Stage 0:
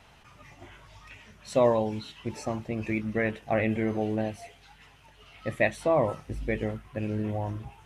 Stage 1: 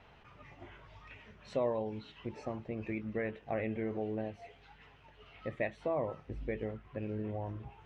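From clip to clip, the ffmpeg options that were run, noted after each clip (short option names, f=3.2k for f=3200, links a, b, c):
-af "lowpass=3.1k,equalizer=f=440:t=o:w=0.6:g=4.5,acompressor=threshold=-41dB:ratio=1.5,volume=-3.5dB"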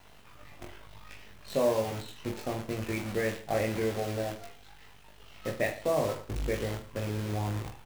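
-filter_complex "[0:a]aexciter=amount=1:drive=9.2:freq=3.4k,acrusher=bits=8:dc=4:mix=0:aa=0.000001,asplit=2[a][b];[b]aecho=0:1:20|45|76.25|115.3|164.1:0.631|0.398|0.251|0.158|0.1[c];[a][c]amix=inputs=2:normalize=0,volume=4dB"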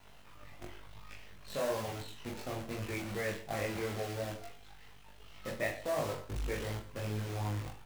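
-filter_complex "[0:a]acrossover=split=860[a][b];[a]asoftclip=type=tanh:threshold=-30.5dB[c];[c][b]amix=inputs=2:normalize=0,flanger=delay=19:depth=2.5:speed=2.8"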